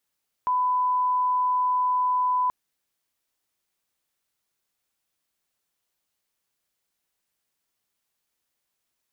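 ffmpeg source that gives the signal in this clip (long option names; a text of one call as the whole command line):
ffmpeg -f lavfi -i "sine=frequency=1000:duration=2.03:sample_rate=44100,volume=-1.94dB" out.wav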